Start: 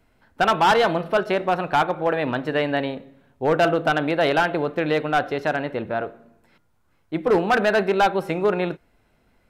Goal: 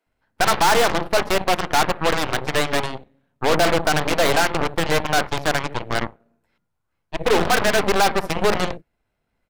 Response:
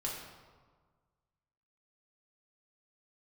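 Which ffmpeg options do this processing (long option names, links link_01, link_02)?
-filter_complex "[0:a]acrossover=split=280[link_01][link_02];[link_01]adelay=60[link_03];[link_03][link_02]amix=inputs=2:normalize=0,volume=17dB,asoftclip=hard,volume=-17dB,aeval=exprs='0.15*(cos(1*acos(clip(val(0)/0.15,-1,1)))-cos(1*PI/2))+0.0596*(cos(3*acos(clip(val(0)/0.15,-1,1)))-cos(3*PI/2))+0.0668*(cos(4*acos(clip(val(0)/0.15,-1,1)))-cos(4*PI/2))+0.0106*(cos(6*acos(clip(val(0)/0.15,-1,1)))-cos(6*PI/2))':channel_layout=same,volume=3dB"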